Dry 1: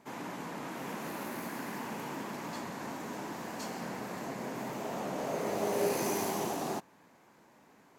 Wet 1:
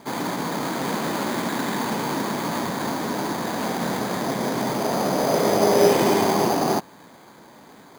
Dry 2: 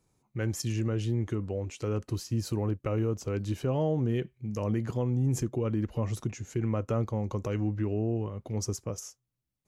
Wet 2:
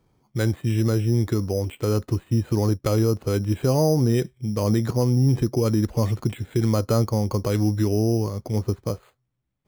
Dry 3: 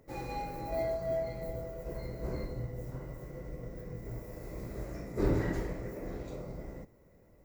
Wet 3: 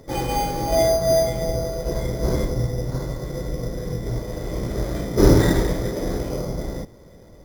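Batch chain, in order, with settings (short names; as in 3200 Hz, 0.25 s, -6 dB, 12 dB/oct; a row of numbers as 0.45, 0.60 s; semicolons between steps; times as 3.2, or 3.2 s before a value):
careless resampling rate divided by 8×, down filtered, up hold; match loudness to -23 LUFS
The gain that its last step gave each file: +14.0, +8.5, +15.0 dB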